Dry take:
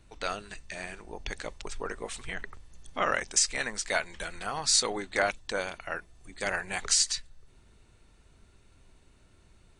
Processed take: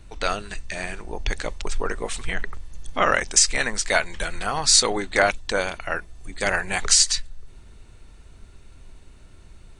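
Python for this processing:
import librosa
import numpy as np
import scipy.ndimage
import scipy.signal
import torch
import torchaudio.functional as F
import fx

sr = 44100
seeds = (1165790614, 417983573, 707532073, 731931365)

y = fx.low_shelf(x, sr, hz=63.0, db=8.5)
y = y * 10.0 ** (8.0 / 20.0)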